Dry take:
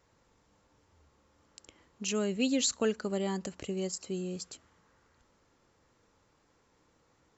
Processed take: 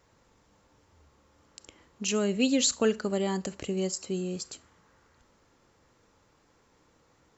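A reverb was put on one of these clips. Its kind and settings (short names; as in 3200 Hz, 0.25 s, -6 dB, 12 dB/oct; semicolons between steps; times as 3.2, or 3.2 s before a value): Schroeder reverb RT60 0.31 s, combs from 28 ms, DRR 18.5 dB; gain +4 dB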